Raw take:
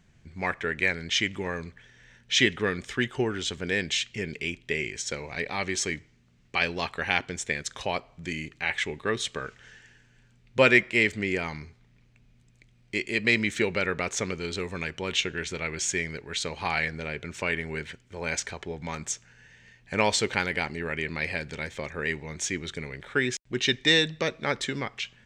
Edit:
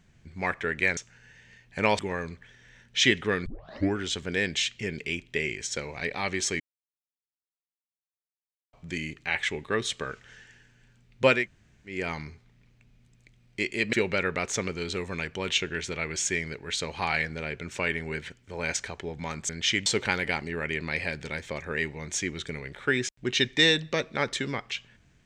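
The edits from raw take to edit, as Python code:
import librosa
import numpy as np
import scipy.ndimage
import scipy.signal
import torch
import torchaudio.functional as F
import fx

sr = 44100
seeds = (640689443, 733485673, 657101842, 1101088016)

y = fx.edit(x, sr, fx.swap(start_s=0.97, length_s=0.37, other_s=19.12, other_length_s=1.02),
    fx.tape_start(start_s=2.81, length_s=0.5),
    fx.silence(start_s=5.95, length_s=2.13),
    fx.room_tone_fill(start_s=10.72, length_s=0.59, crossfade_s=0.24),
    fx.cut(start_s=13.28, length_s=0.28), tone=tone)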